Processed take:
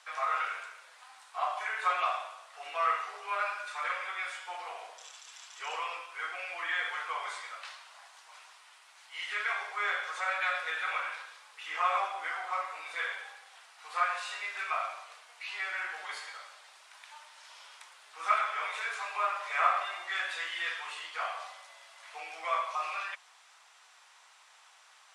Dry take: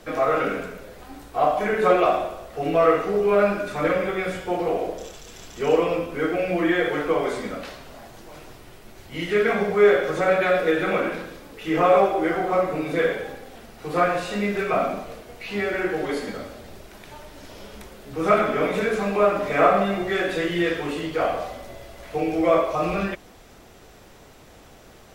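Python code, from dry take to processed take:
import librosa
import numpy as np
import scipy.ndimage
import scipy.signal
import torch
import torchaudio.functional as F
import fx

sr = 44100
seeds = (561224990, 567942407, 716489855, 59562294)

y = scipy.signal.sosfilt(scipy.signal.ellip(3, 1.0, 60, [960.0, 9500.0], 'bandpass', fs=sr, output='sos'), x)
y = y * librosa.db_to_amplitude(-4.5)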